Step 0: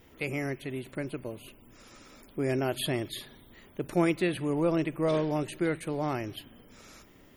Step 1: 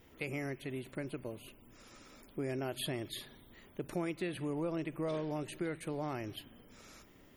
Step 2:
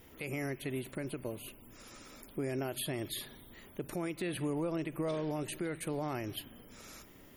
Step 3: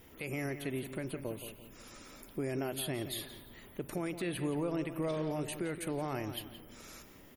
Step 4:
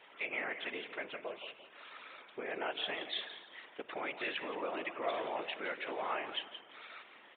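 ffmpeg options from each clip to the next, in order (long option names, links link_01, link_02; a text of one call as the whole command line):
ffmpeg -i in.wav -af "acompressor=threshold=-31dB:ratio=3,volume=-4dB" out.wav
ffmpeg -i in.wav -af "equalizer=frequency=13000:width=0.76:gain=8.5,alimiter=level_in=7dB:limit=-24dB:level=0:latency=1:release=97,volume=-7dB,volume=3.5dB" out.wav
ffmpeg -i in.wav -filter_complex "[0:a]asplit=2[link_01][link_02];[link_02]adelay=172,lowpass=frequency=4000:poles=1,volume=-10.5dB,asplit=2[link_03][link_04];[link_04]adelay=172,lowpass=frequency=4000:poles=1,volume=0.34,asplit=2[link_05][link_06];[link_06]adelay=172,lowpass=frequency=4000:poles=1,volume=0.34,asplit=2[link_07][link_08];[link_08]adelay=172,lowpass=frequency=4000:poles=1,volume=0.34[link_09];[link_01][link_03][link_05][link_07][link_09]amix=inputs=5:normalize=0" out.wav
ffmpeg -i in.wav -af "afftfilt=real='hypot(re,im)*cos(2*PI*random(0))':imag='hypot(re,im)*sin(2*PI*random(1))':win_size=512:overlap=0.75,highpass=810,aresample=8000,aresample=44100,volume=12dB" out.wav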